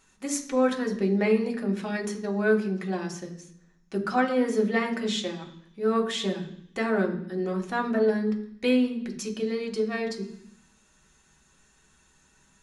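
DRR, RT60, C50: 1.0 dB, 0.65 s, 11.0 dB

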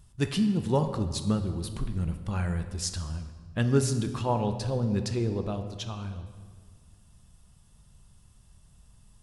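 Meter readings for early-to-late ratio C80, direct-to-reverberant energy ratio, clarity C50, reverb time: 10.5 dB, 7.0 dB, 9.5 dB, 1.7 s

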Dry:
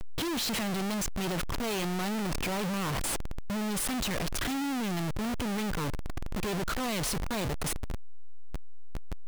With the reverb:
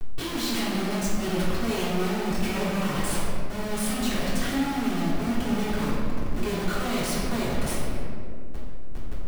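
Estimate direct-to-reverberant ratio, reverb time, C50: -11.0 dB, 2.3 s, -1.5 dB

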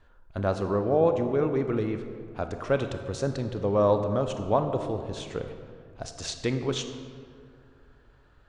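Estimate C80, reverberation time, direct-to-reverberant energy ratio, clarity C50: 9.0 dB, 2.2 s, 7.0 dB, 8.0 dB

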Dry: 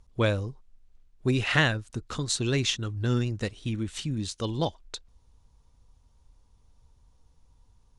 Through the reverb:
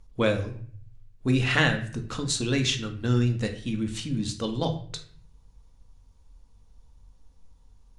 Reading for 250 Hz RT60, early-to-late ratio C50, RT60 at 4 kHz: 0.70 s, 11.0 dB, 0.40 s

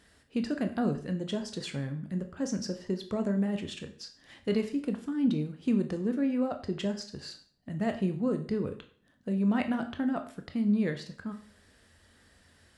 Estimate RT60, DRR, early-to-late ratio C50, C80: 0.45 s, 6.0 dB, 12.0 dB, 15.0 dB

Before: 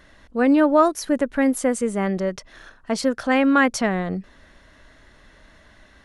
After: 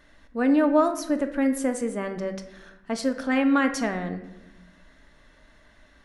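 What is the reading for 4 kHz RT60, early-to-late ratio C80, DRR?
0.65 s, 13.0 dB, 6.0 dB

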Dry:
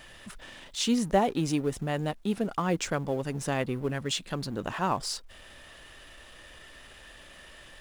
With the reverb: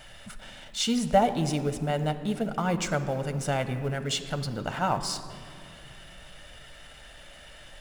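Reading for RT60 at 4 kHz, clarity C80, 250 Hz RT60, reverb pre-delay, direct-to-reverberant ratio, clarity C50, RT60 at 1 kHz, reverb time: 1.3 s, 12.0 dB, 3.8 s, 7 ms, 8.5 dB, 11.5 dB, 2.1 s, 2.3 s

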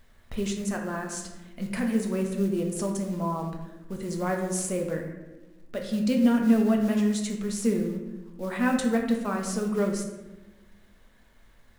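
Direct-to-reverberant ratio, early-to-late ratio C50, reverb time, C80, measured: 1.5 dB, 5.5 dB, 1.1 s, 7.5 dB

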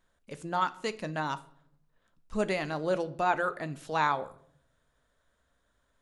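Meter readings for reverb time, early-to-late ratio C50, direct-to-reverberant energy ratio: 0.70 s, 18.0 dB, 11.5 dB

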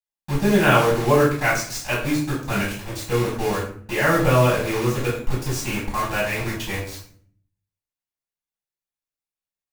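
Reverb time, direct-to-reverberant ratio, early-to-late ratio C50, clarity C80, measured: 0.55 s, -8.5 dB, 4.0 dB, 8.5 dB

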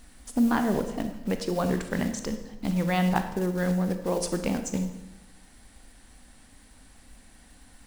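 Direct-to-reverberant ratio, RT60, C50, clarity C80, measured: 7.5 dB, 1.0 s, 9.0 dB, 11.0 dB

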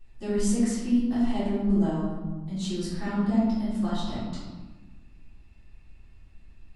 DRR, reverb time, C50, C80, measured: -12.5 dB, 1.3 s, -1.0 dB, 2.0 dB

